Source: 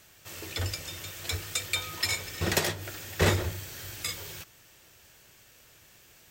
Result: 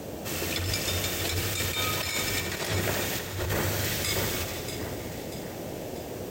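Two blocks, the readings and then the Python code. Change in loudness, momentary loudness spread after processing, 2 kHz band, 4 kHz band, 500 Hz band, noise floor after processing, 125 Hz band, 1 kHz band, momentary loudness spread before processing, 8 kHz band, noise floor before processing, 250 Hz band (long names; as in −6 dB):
+2.0 dB, 10 LU, +2.5 dB, +3.0 dB, +4.0 dB, −38 dBFS, +2.0 dB, +3.5 dB, 15 LU, +4.0 dB, −58 dBFS, +4.5 dB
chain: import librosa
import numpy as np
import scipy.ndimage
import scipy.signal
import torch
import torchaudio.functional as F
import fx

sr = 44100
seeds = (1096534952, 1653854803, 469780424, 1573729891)

y = fx.dmg_noise_band(x, sr, seeds[0], low_hz=61.0, high_hz=640.0, level_db=-47.0)
y = fx.echo_alternate(y, sr, ms=319, hz=2100.0, feedback_pct=70, wet_db=-12.5)
y = fx.over_compress(y, sr, threshold_db=-35.0, ratio=-1.0)
y = fx.echo_crushed(y, sr, ms=80, feedback_pct=80, bits=9, wet_db=-9.5)
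y = y * librosa.db_to_amplitude(5.5)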